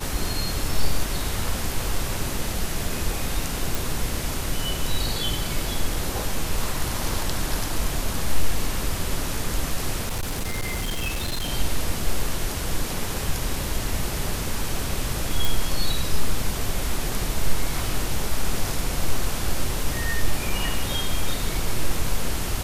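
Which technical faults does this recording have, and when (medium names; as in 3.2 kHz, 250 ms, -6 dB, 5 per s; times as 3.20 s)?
3.75 s: pop
10.05–11.50 s: clipped -22.5 dBFS
15.45 s: pop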